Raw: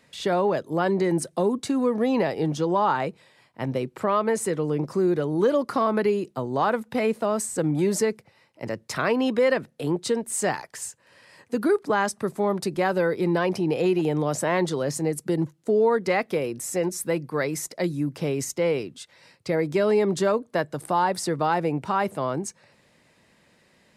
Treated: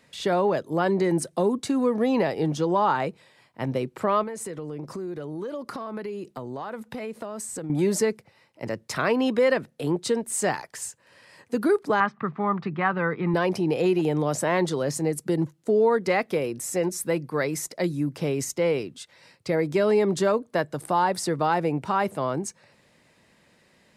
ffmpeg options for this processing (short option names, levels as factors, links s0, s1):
-filter_complex "[0:a]asettb=1/sr,asplit=3[s0][s1][s2];[s0]atrim=end=4.234[s3];[s1]atrim=start=4.23:end=7.7,asetpts=PTS-STARTPTS,afade=t=in:d=0.004:c=qsin,afade=t=out:st=3.466:d=0.004:c=qsin,acompressor=threshold=0.0282:ratio=5:attack=3.2:release=140:knee=1:detection=peak[s4];[s2]atrim=start=7.696[s5];[s3][s4]acrossfade=d=0.004:c1=hsin:c2=qsin[s6];[s6][s5]acrossfade=d=0.004:c1=qsin:c2=hsin,asettb=1/sr,asplit=3[s7][s8][s9];[s7]atrim=end=12.004[s10];[s8]atrim=start=12:end=13.34,asetpts=PTS-STARTPTS,afade=t=in:d=0.004:c=qsin,afade=t=out:st=1.336:d=0.004:c=qsin,highpass=140,equalizer=f=150:t=q:w=4:g=8,equalizer=f=380:t=q:w=4:g=-7,equalizer=f=570:t=q:w=4:g=-9,equalizer=f=1200:t=q:w=4:g=10,equalizer=f=1900:t=q:w=4:g=3,lowpass=f=2900:w=0.5412,lowpass=f=2900:w=1.3066[s11];[s9]atrim=start=13.336[s12];[s10][s11]acrossfade=d=0.004:c1=hsin:c2=qsin[s13];[s13][s12]acrossfade=d=0.004:c1=qsin:c2=hsin"